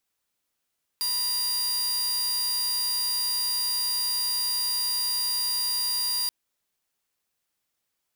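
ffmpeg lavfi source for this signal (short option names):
-f lavfi -i "aevalsrc='0.0794*(2*mod(4790*t,1)-1)':d=5.28:s=44100"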